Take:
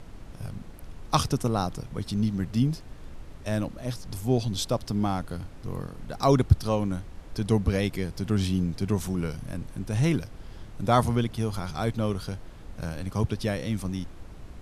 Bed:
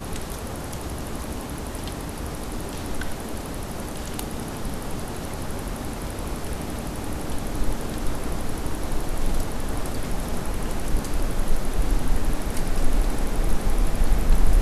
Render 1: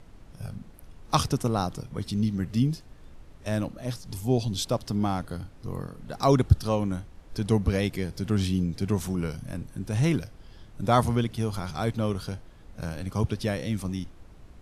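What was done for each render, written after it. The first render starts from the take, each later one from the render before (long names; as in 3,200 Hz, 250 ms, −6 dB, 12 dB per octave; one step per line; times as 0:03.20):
noise reduction from a noise print 6 dB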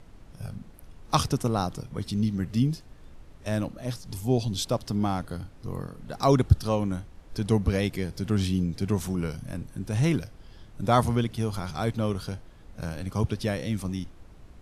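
no processing that can be heard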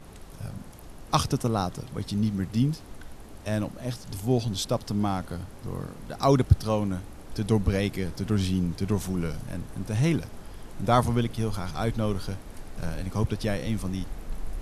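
mix in bed −16.5 dB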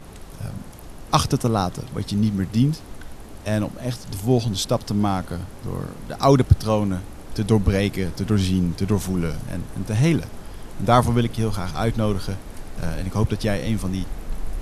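level +5.5 dB
brickwall limiter −2 dBFS, peak gain reduction 1.5 dB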